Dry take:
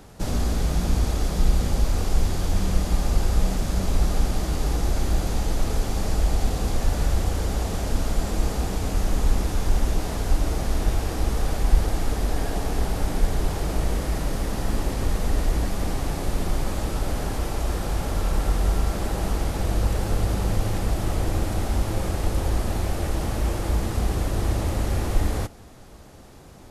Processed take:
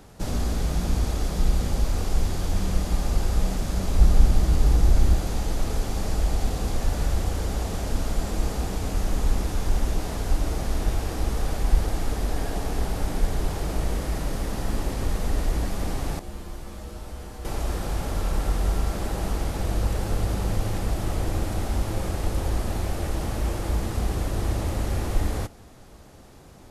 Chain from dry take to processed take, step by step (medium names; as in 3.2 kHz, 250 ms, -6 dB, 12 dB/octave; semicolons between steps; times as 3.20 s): 3.98–5.14 s: bass shelf 170 Hz +8.5 dB; 16.19–17.45 s: feedback comb 69 Hz, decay 0.4 s, harmonics odd, mix 80%; trim -2 dB